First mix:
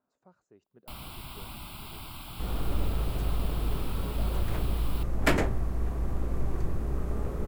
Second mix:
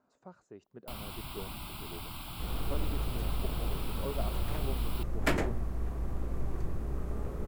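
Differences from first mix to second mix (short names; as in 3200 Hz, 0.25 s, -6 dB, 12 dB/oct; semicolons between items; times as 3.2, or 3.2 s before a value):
speech +8.5 dB; second sound -4.5 dB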